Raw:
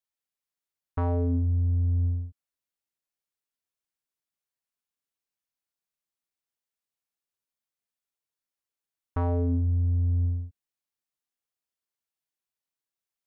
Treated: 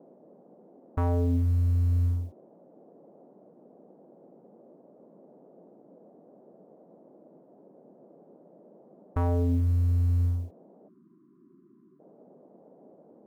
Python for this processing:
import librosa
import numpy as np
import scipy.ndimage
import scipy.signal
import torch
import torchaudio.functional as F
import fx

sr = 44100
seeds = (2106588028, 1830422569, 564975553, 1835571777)

p1 = fx.law_mismatch(x, sr, coded='A')
p2 = fx.dmg_noise_band(p1, sr, seeds[0], low_hz=170.0, high_hz=650.0, level_db=-58.0)
p3 = 10.0 ** (-33.5 / 20.0) * np.tanh(p2 / 10.0 ** (-33.5 / 20.0))
p4 = p2 + (p3 * librosa.db_to_amplitude(-7.0))
y = fx.spec_erase(p4, sr, start_s=10.88, length_s=1.12, low_hz=400.0, high_hz=990.0)